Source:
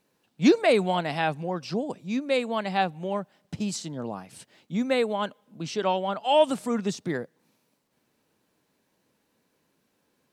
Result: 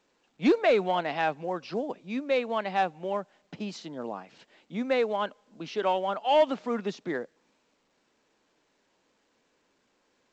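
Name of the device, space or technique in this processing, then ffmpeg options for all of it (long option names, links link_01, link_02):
telephone: -af "highpass=280,lowpass=3300,asoftclip=type=tanh:threshold=-13dB" -ar 16000 -c:a pcm_alaw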